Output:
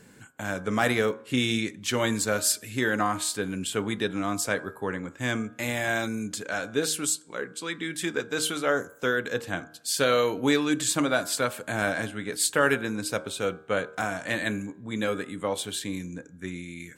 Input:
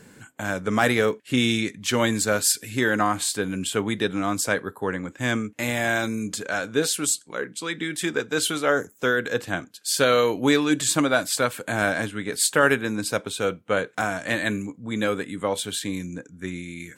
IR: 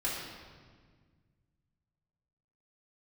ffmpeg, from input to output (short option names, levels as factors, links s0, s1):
-filter_complex "[0:a]bandreject=f=77.93:t=h:w=4,bandreject=f=155.86:t=h:w=4,bandreject=f=233.79:t=h:w=4,bandreject=f=311.72:t=h:w=4,bandreject=f=389.65:t=h:w=4,bandreject=f=467.58:t=h:w=4,bandreject=f=545.51:t=h:w=4,bandreject=f=623.44:t=h:w=4,bandreject=f=701.37:t=h:w=4,bandreject=f=779.3:t=h:w=4,bandreject=f=857.23:t=h:w=4,bandreject=f=935.16:t=h:w=4,bandreject=f=1013.09:t=h:w=4,bandreject=f=1091.02:t=h:w=4,bandreject=f=1168.95:t=h:w=4,bandreject=f=1246.88:t=h:w=4,bandreject=f=1324.81:t=h:w=4,bandreject=f=1402.74:t=h:w=4,bandreject=f=1480.67:t=h:w=4,bandreject=f=1558.6:t=h:w=4,bandreject=f=1636.53:t=h:w=4,asplit=2[s0][s1];[1:a]atrim=start_sample=2205,asetrate=74970,aresample=44100[s2];[s1][s2]afir=irnorm=-1:irlink=0,volume=0.0398[s3];[s0][s3]amix=inputs=2:normalize=0,volume=0.668"